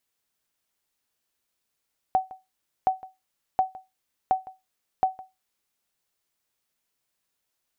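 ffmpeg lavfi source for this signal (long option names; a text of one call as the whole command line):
ffmpeg -f lavfi -i "aevalsrc='0.224*(sin(2*PI*755*mod(t,0.72))*exp(-6.91*mod(t,0.72)/0.21)+0.1*sin(2*PI*755*max(mod(t,0.72)-0.16,0))*exp(-6.91*max(mod(t,0.72)-0.16,0)/0.21))':duration=3.6:sample_rate=44100" out.wav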